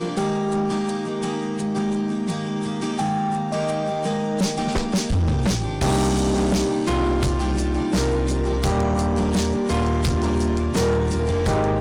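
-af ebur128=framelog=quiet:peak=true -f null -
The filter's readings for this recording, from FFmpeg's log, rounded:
Integrated loudness:
  I:         -22.4 LUFS
  Threshold: -32.4 LUFS
Loudness range:
  LRA:         3.1 LU
  Threshold: -42.3 LUFS
  LRA low:   -24.5 LUFS
  LRA high:  -21.3 LUFS
True peak:
  Peak:      -16.2 dBFS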